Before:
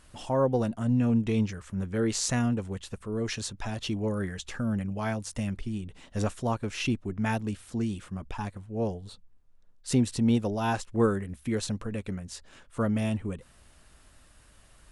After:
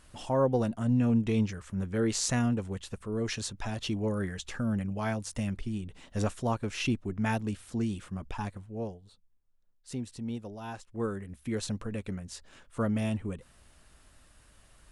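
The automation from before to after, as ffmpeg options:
-af "volume=9.5dB,afade=t=out:st=8.53:d=0.47:silence=0.266073,afade=t=in:st=10.83:d=0.91:silence=0.298538"

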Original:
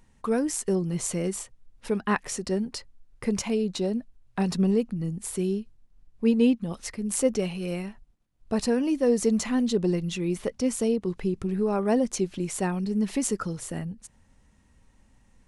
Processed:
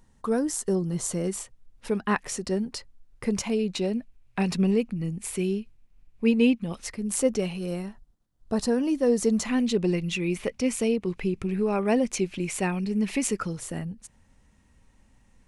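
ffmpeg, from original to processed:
-af "asetnsamples=n=441:p=0,asendcmd='1.27 equalizer g 0.5;3.59 equalizer g 9.5;6.81 equalizer g 0.5;7.59 equalizer g -7.5;8.79 equalizer g -1.5;9.49 equalizer g 10.5;13.48 equalizer g 1.5',equalizer=f=2.4k:t=o:w=0.56:g=-7"

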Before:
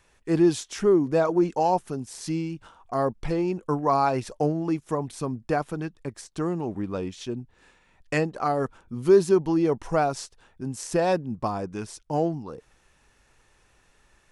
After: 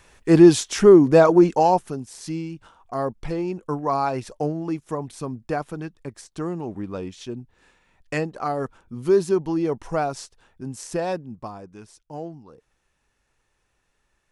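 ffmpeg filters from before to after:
-af "volume=8.5dB,afade=t=out:st=1.27:d=0.8:silence=0.334965,afade=t=out:st=10.76:d=0.85:silence=0.375837"

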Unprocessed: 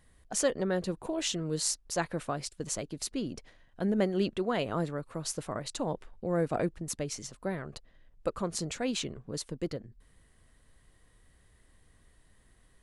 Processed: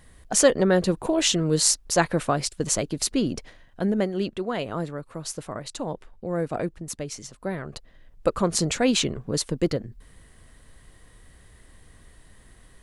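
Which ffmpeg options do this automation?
-af "volume=19.5dB,afade=t=out:st=3.35:d=0.74:silence=0.375837,afade=t=in:st=7.29:d=1.34:silence=0.354813"

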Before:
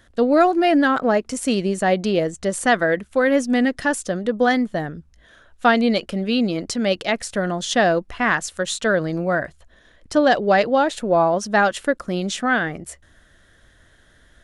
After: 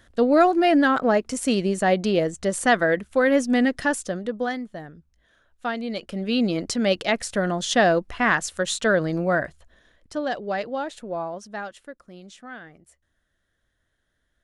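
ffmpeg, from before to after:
-af "volume=9.5dB,afade=t=out:st=3.81:d=0.79:silence=0.298538,afade=t=in:st=5.88:d=0.62:silence=0.281838,afade=t=out:st=9.4:d=0.74:silence=0.316228,afade=t=out:st=10.92:d=0.96:silence=0.354813"

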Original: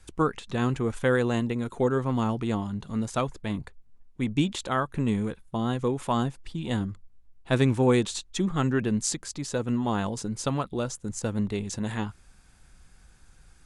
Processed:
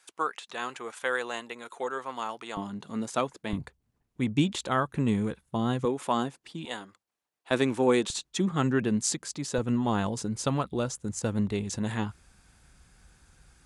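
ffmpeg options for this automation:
-af "asetnsamples=n=441:p=0,asendcmd='2.57 highpass f 230;3.53 highpass f 75;5.85 highpass f 240;6.65 highpass f 620;7.51 highpass f 260;8.1 highpass f 120;9.58 highpass f 42',highpass=740"

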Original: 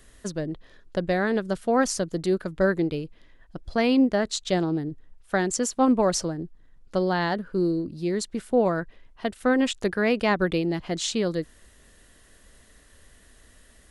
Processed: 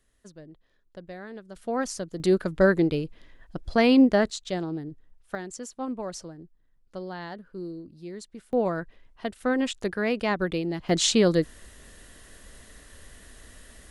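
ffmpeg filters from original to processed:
-af "asetnsamples=n=441:p=0,asendcmd='1.56 volume volume -6.5dB;2.2 volume volume 2.5dB;4.3 volume volume -6dB;5.35 volume volume -12.5dB;8.53 volume volume -3.5dB;10.89 volume volume 5.5dB',volume=-16.5dB"

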